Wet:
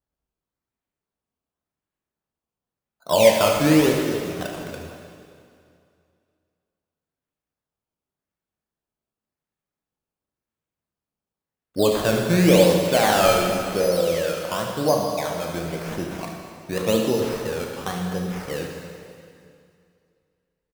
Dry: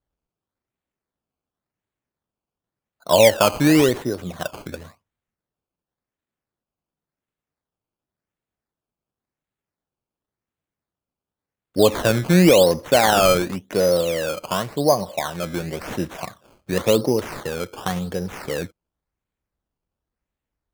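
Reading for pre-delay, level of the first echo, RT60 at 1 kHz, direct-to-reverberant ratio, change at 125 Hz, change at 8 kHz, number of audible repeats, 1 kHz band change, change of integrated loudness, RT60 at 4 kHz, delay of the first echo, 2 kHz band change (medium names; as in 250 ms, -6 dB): 6 ms, -11.0 dB, 2.4 s, 0.5 dB, -1.5 dB, -2.0 dB, 1, -1.5 dB, -1.5 dB, 2.2 s, 73 ms, -1.5 dB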